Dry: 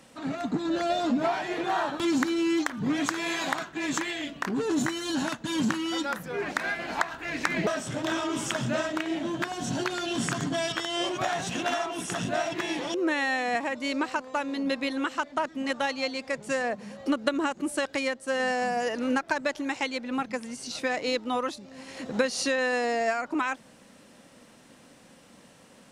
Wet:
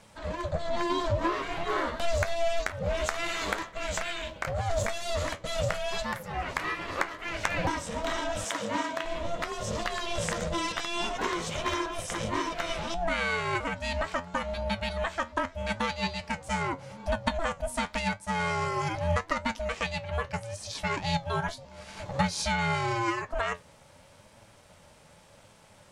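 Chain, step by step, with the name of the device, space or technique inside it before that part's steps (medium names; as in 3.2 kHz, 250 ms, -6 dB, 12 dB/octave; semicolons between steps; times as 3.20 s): alien voice (ring modulator 340 Hz; flange 0.82 Hz, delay 8.8 ms, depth 4.2 ms, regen +64%); 8.44–9.03 s: high-pass 320 Hz -> 140 Hz 12 dB/octave; trim +5.5 dB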